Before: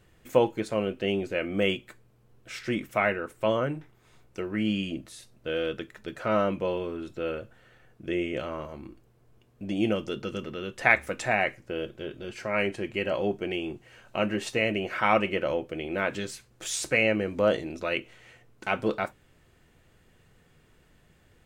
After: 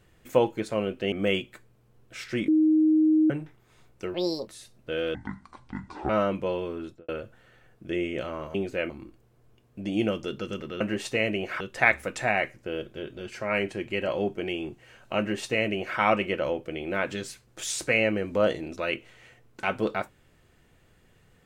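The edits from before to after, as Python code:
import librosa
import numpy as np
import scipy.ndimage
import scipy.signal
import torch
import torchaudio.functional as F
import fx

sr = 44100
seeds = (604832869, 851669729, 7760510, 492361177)

y = fx.studio_fade_out(x, sr, start_s=7.01, length_s=0.26)
y = fx.edit(y, sr, fx.move(start_s=1.12, length_s=0.35, to_s=8.73),
    fx.bleep(start_s=2.83, length_s=0.82, hz=312.0, db=-17.0),
    fx.speed_span(start_s=4.49, length_s=0.56, speed=1.67),
    fx.speed_span(start_s=5.72, length_s=0.56, speed=0.59),
    fx.duplicate(start_s=14.22, length_s=0.8, to_s=10.64), tone=tone)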